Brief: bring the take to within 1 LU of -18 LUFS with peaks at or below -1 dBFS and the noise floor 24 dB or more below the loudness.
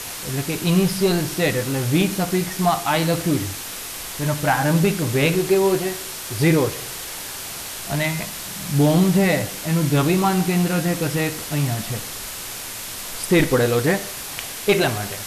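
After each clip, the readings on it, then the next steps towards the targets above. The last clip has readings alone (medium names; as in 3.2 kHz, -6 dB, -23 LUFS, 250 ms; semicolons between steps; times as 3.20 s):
noise floor -32 dBFS; noise floor target -45 dBFS; loudness -21.0 LUFS; peak level -6.5 dBFS; loudness target -18.0 LUFS
-> noise reduction 13 dB, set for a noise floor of -32 dBFS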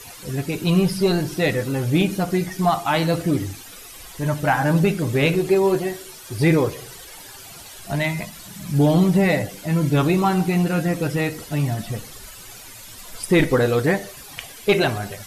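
noise floor -41 dBFS; noise floor target -45 dBFS
-> noise reduction 6 dB, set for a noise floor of -41 dBFS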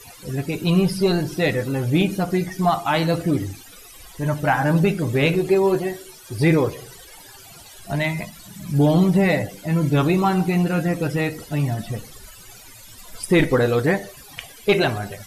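noise floor -44 dBFS; noise floor target -45 dBFS
-> noise reduction 6 dB, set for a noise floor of -44 dBFS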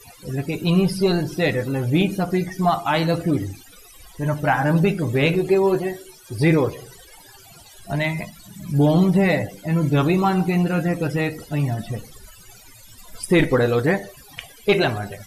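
noise floor -47 dBFS; loudness -21.0 LUFS; peak level -7.5 dBFS; loudness target -18.0 LUFS
-> trim +3 dB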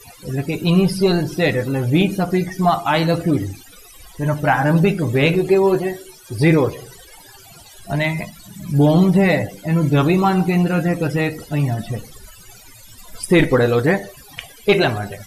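loudness -18.0 LUFS; peak level -4.5 dBFS; noise floor -44 dBFS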